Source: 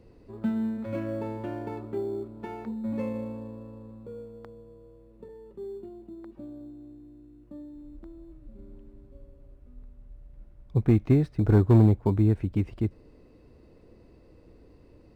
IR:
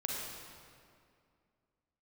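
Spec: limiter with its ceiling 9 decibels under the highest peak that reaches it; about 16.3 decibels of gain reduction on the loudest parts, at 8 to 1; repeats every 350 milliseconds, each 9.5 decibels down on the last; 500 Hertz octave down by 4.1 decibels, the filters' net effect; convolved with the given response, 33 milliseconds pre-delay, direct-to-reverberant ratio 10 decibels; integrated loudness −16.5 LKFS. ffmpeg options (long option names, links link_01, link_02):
-filter_complex "[0:a]equalizer=frequency=500:width_type=o:gain=-6,acompressor=threshold=-33dB:ratio=8,alimiter=level_in=9dB:limit=-24dB:level=0:latency=1,volume=-9dB,aecho=1:1:350|700|1050|1400:0.335|0.111|0.0365|0.012,asplit=2[link_01][link_02];[1:a]atrim=start_sample=2205,adelay=33[link_03];[link_02][link_03]afir=irnorm=-1:irlink=0,volume=-13.5dB[link_04];[link_01][link_04]amix=inputs=2:normalize=0,volume=27dB"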